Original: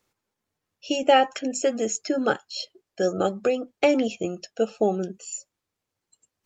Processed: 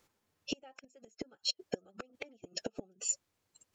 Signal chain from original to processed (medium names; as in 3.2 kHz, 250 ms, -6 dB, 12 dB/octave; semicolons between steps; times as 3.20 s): inverted gate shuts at -21 dBFS, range -41 dB; time stretch by phase-locked vocoder 0.58×; trim +4.5 dB